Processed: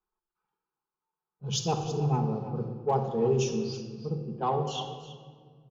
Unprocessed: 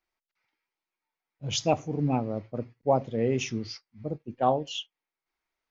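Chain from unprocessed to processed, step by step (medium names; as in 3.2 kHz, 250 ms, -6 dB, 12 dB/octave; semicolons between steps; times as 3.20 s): level-controlled noise filter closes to 1.8 kHz, open at -24 dBFS; static phaser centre 410 Hz, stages 8; Chebyshev shaper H 5 -31 dB, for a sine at -17 dBFS; on a send: delay 326 ms -14.5 dB; on the sum: simulated room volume 2500 m³, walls mixed, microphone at 1.4 m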